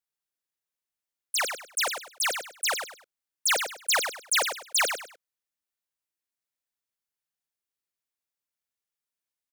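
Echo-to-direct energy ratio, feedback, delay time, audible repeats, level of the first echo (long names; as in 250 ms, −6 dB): −6.5 dB, 27%, 101 ms, 3, −7.0 dB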